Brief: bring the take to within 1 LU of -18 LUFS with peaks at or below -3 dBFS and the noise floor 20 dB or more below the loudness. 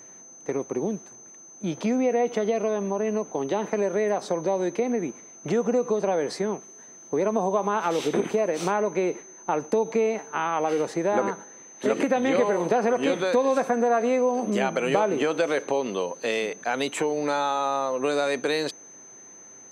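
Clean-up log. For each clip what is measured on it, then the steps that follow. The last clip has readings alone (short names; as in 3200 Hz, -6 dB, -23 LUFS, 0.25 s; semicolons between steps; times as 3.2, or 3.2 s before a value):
steady tone 6200 Hz; tone level -45 dBFS; loudness -25.5 LUFS; peak -8.5 dBFS; loudness target -18.0 LUFS
-> notch 6200 Hz, Q 30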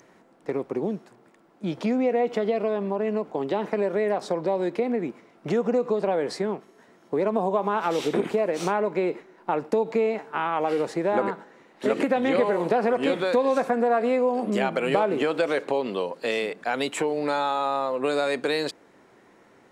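steady tone none; loudness -25.5 LUFS; peak -8.5 dBFS; loudness target -18.0 LUFS
-> gain +7.5 dB; limiter -3 dBFS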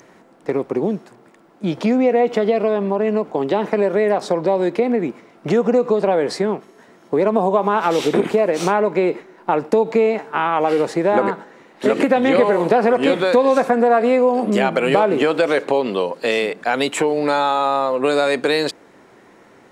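loudness -18.0 LUFS; peak -3.0 dBFS; noise floor -49 dBFS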